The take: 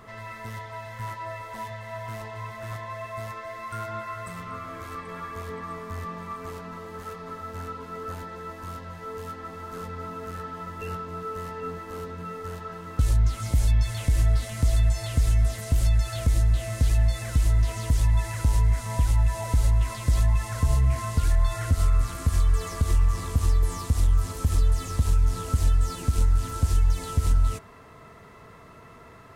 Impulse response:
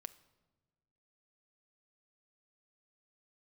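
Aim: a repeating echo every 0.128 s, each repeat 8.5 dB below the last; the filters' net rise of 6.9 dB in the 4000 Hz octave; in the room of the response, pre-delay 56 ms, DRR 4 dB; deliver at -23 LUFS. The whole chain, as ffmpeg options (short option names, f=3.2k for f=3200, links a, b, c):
-filter_complex "[0:a]equalizer=f=4k:t=o:g=8.5,aecho=1:1:128|256|384|512:0.376|0.143|0.0543|0.0206,asplit=2[a][b];[1:a]atrim=start_sample=2205,adelay=56[c];[b][c]afir=irnorm=-1:irlink=0,volume=1dB[d];[a][d]amix=inputs=2:normalize=0"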